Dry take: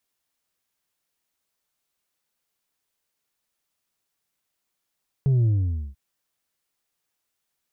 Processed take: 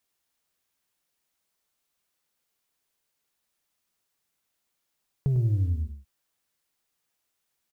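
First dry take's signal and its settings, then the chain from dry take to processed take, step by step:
sub drop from 140 Hz, over 0.69 s, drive 3.5 dB, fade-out 0.50 s, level -17 dB
compressor 6:1, threshold -23 dBFS; short-mantissa float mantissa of 6-bit; echo 0.101 s -8.5 dB

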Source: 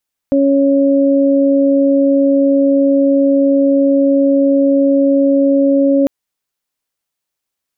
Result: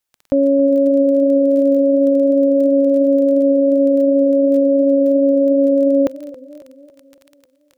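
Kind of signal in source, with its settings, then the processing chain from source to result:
steady additive tone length 5.75 s, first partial 277 Hz, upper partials -2.5 dB, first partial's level -10 dB
crackle 18/s -29 dBFS; bell 230 Hz -5.5 dB 0.69 oct; warbling echo 0.277 s, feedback 52%, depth 89 cents, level -19.5 dB

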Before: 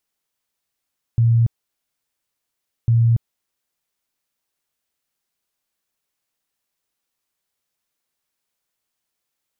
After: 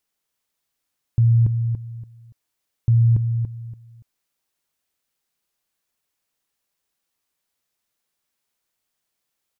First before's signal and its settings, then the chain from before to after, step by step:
tone bursts 116 Hz, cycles 33, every 1.70 s, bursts 2, -11.5 dBFS
feedback echo 0.286 s, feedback 25%, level -7 dB

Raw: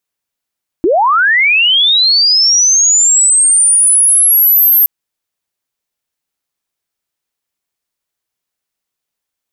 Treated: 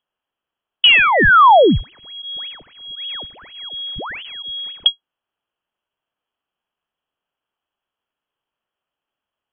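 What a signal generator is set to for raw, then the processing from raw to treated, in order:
chirp linear 300 Hz -> 13000 Hz -7 dBFS -> -5 dBFS 4.02 s
minimum comb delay 0.42 ms; in parallel at -6 dB: soft clip -13 dBFS; on the sum: inverted band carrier 3300 Hz

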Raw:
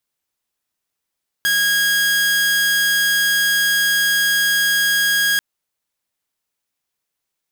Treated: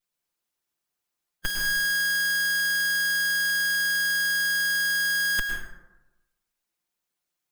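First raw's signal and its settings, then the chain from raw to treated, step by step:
tone saw 1640 Hz -12 dBFS 3.94 s
minimum comb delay 5.7 ms; harmonic-percussive split harmonic -9 dB; plate-style reverb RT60 1 s, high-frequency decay 0.45×, pre-delay 95 ms, DRR 1.5 dB

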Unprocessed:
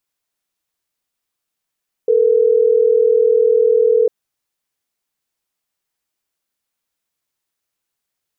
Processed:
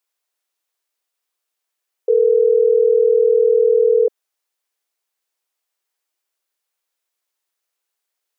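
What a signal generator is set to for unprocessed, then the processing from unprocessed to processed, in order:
call progress tone ringback tone, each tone -12.5 dBFS
HPF 370 Hz 24 dB/oct

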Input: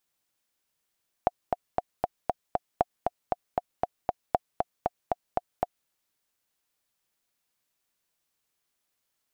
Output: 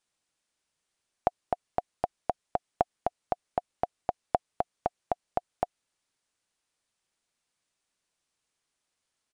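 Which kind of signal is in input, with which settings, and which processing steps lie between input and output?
metronome 234 bpm, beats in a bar 6, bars 3, 718 Hz, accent 3.5 dB -8 dBFS
downsampling 22050 Hz

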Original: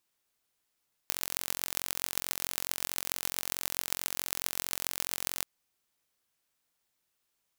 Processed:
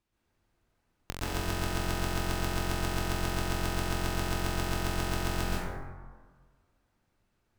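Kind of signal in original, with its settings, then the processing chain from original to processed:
pulse train 44.6/s, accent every 6, -1.5 dBFS 4.34 s
RIAA curve playback; plate-style reverb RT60 1.6 s, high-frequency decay 0.35×, pre-delay 0.11 s, DRR -8 dB

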